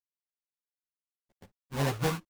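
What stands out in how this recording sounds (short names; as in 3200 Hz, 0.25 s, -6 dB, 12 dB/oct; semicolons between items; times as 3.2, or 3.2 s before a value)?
a quantiser's noise floor 12-bit, dither none; phasing stages 2, 1.7 Hz, lowest notch 570–1200 Hz; aliases and images of a low sample rate 1300 Hz, jitter 20%; a shimmering, thickened sound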